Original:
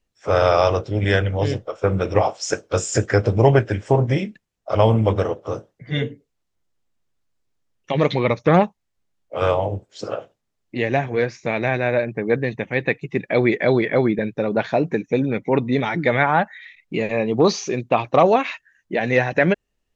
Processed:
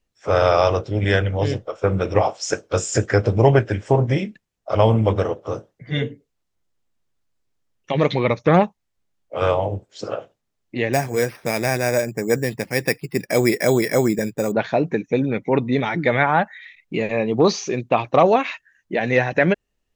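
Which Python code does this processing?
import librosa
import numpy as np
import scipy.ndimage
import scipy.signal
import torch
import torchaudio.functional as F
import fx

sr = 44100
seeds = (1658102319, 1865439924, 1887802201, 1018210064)

y = fx.resample_bad(x, sr, factor=6, down='none', up='hold', at=(10.93, 14.52))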